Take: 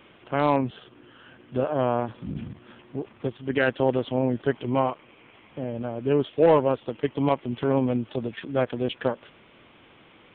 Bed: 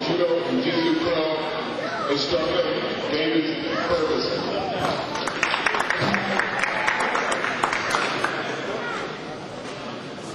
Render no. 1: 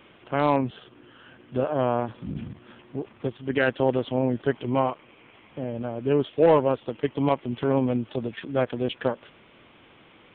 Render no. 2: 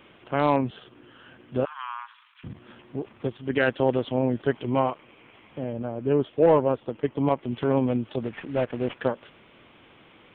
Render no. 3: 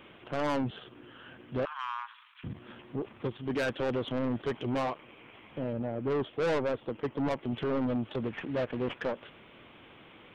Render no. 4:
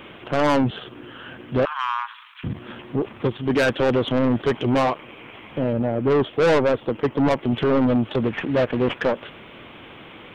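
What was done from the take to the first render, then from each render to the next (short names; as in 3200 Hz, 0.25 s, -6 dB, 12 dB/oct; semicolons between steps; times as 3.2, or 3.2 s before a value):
nothing audible
1.65–2.44 steep high-pass 970 Hz 72 dB/oct; 5.73–7.43 LPF 1700 Hz 6 dB/oct; 8.23–8.95 CVSD 16 kbps
soft clip -26 dBFS, distortion -5 dB
gain +11.5 dB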